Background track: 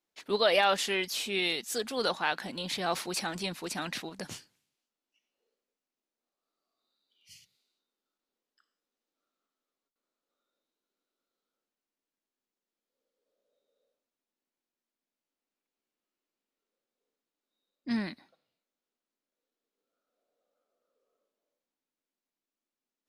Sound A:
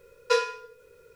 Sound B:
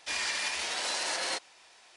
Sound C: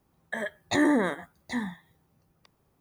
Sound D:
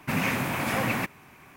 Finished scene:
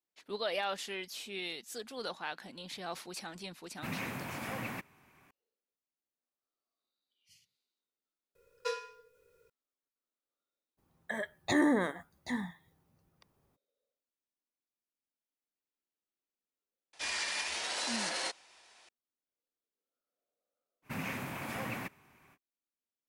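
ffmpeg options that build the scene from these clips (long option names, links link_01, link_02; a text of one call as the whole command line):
ffmpeg -i bed.wav -i cue0.wav -i cue1.wav -i cue2.wav -i cue3.wav -filter_complex "[4:a]asplit=2[link_01][link_02];[0:a]volume=-10dB[link_03];[1:a]highshelf=frequency=8800:gain=5.5[link_04];[link_01]atrim=end=1.56,asetpts=PTS-STARTPTS,volume=-12.5dB,afade=type=in:duration=0.004:curve=hsin,afade=type=out:start_time=1.556:duration=0.004:curve=hsin,adelay=3750[link_05];[link_04]atrim=end=1.15,asetpts=PTS-STARTPTS,volume=-13dB,afade=type=in:duration=0.004:curve=hsin,afade=type=out:start_time=1.146:duration=0.004:curve=hsin,adelay=8350[link_06];[3:a]atrim=end=2.8,asetpts=PTS-STARTPTS,volume=-4.5dB,afade=type=in:duration=0.02,afade=type=out:start_time=2.78:duration=0.02,adelay=10770[link_07];[2:a]atrim=end=1.96,asetpts=PTS-STARTPTS,volume=-3.5dB,afade=type=in:duration=0.004:curve=hsin,afade=type=out:start_time=1.956:duration=0.004:curve=hsin,adelay=16930[link_08];[link_02]atrim=end=1.56,asetpts=PTS-STARTPTS,volume=-12dB,afade=type=in:duration=0.05,afade=type=out:start_time=1.51:duration=0.05,adelay=20820[link_09];[link_03][link_05][link_06][link_07][link_08][link_09]amix=inputs=6:normalize=0" out.wav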